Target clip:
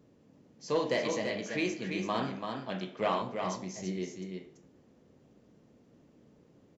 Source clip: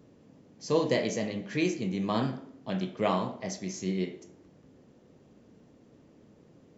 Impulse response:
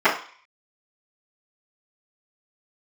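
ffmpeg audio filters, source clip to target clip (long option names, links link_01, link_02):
-filter_complex "[0:a]asettb=1/sr,asplit=3[link_01][link_02][link_03];[link_01]atrim=end=0.684[link_04];[link_02]atrim=start=0.68:end=3.22,asetpts=PTS-STARTPTS,afade=type=in:duration=0.004:curve=qsin,afade=type=out:start_time=2.536:duration=0.004:curve=qsin,asplit=2[link_05][link_06];[link_06]highpass=frequency=720:poles=1,volume=11dB,asoftclip=type=tanh:threshold=-11.5dB[link_07];[link_05][link_07]amix=inputs=2:normalize=0,lowpass=frequency=3900:poles=1,volume=-6dB[link_08];[link_03]atrim=start=3.216[link_09];[link_04][link_08]acrossfade=duration=0.004:curve1=hsin:curve2=qsin[link_10];[link_10][link_09]acrossfade=duration=0.004:curve1=qsin:curve2=hsin,aecho=1:1:336:0.531,volume=-5dB"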